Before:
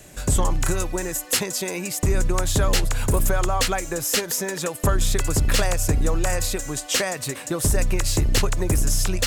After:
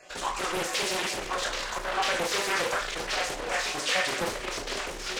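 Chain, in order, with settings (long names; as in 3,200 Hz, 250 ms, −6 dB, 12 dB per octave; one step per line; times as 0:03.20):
time-frequency cells dropped at random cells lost 30%
soft clipping −25.5 dBFS, distortion −8 dB
on a send: delay with a band-pass on its return 464 ms, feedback 50%, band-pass 1,400 Hz, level −18 dB
on the sum: automatic gain control gain up to 4 dB
mains-hum notches 50/100/150/200/250/300/350/400/450 Hz
four-comb reverb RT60 0.89 s, combs from 31 ms, DRR −1.5 dB
in parallel at −5 dB: bit reduction 5 bits
on the sum: dynamic equaliser 820 Hz, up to −4 dB, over −38 dBFS, Q 2
hard clipping −17.5 dBFS, distortion −11 dB
three-way crossover with the lows and the highs turned down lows −22 dB, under 390 Hz, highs −22 dB, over 5,800 Hz
phase-vocoder stretch with locked phases 0.56×
highs frequency-modulated by the lows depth 0.55 ms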